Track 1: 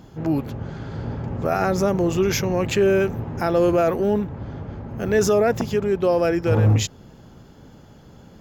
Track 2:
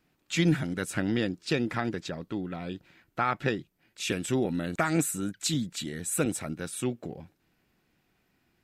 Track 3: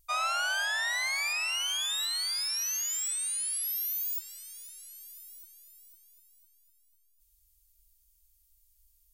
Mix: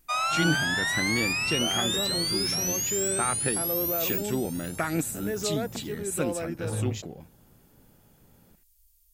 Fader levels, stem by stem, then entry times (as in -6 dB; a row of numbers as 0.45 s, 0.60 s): -13.5 dB, -2.0 dB, +3.0 dB; 0.15 s, 0.00 s, 0.00 s